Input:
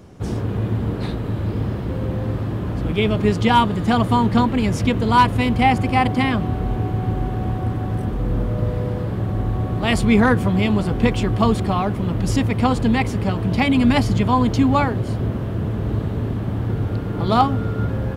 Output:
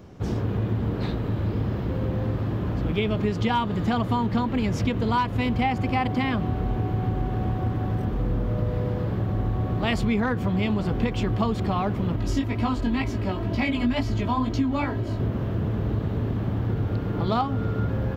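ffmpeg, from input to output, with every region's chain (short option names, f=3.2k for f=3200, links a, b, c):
-filter_complex "[0:a]asettb=1/sr,asplit=3[a][b][c];[a]atrim=end=12.164[d];[b]atrim=start=12.16:end=15.2,asetpts=PTS-STARTPTS,afade=t=in:d=0.004:c=qsin,afade=t=out:st=3.036:d=0.004:c=qsin,aecho=1:1:3.1:0.56,atrim=end_sample=134064,flanger=delay=17.5:depth=4.2:speed=2.1[e];[c]atrim=start=15.196[f];[d][e]acrossfade=d=0.004:c1=hsin:c2=qsin[g];[g][f]acrossfade=d=0.004:c1=qsin:c2=hsin,equalizer=f=9.5k:w=2.1:g=-14,acompressor=threshold=-18dB:ratio=6,volume=-2dB"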